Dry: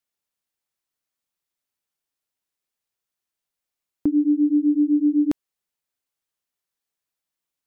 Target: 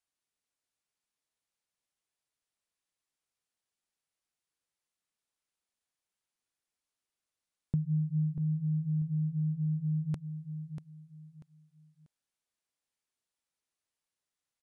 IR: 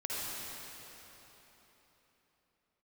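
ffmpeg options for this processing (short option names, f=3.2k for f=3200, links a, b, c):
-filter_complex "[0:a]acompressor=threshold=-21dB:ratio=6,asetrate=23108,aresample=44100,asplit=2[a][b];[b]aecho=0:1:640|1280|1920:0.355|0.0958|0.0259[c];[a][c]amix=inputs=2:normalize=0,volume=-6.5dB"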